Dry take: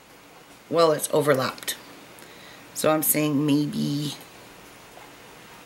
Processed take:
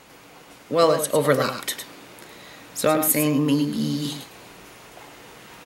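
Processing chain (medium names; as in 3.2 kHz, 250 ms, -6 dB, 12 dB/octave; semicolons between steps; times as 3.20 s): delay 106 ms -8.5 dB; trim +1 dB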